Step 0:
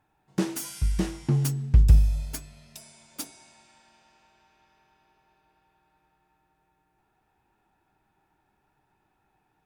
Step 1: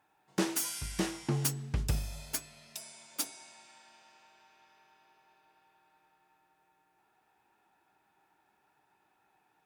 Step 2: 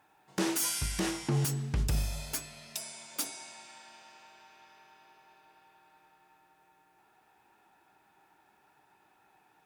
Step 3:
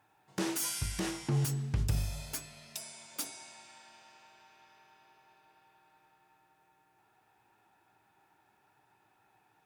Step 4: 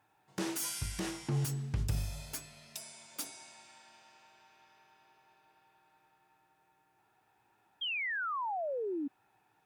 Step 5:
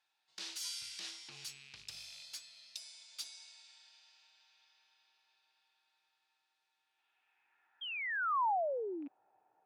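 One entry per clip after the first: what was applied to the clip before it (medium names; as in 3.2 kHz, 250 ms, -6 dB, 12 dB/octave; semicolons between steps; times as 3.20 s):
high-pass 510 Hz 6 dB/octave; trim +2 dB
peak limiter -26.5 dBFS, peak gain reduction 11 dB; trim +6 dB
peaking EQ 110 Hz +10.5 dB 0.41 oct; trim -3.5 dB
painted sound fall, 7.81–9.08 s, 270–3300 Hz -33 dBFS; trim -2.5 dB
rattle on loud lows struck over -42 dBFS, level -40 dBFS; band-pass sweep 4.2 kHz -> 610 Hz, 6.73–8.94 s; trim +4.5 dB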